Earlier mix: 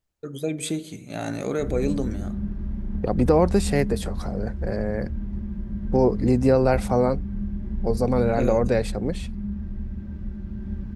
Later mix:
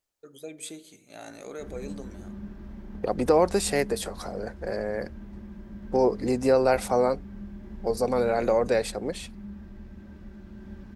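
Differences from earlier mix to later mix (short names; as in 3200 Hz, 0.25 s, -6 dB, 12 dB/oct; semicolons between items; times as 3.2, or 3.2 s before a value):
first voice -10.5 dB; master: add tone controls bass -14 dB, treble +4 dB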